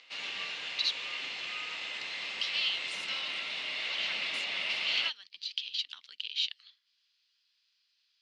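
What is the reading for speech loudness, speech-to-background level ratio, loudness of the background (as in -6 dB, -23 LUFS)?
-35.5 LUFS, -1.0 dB, -34.5 LUFS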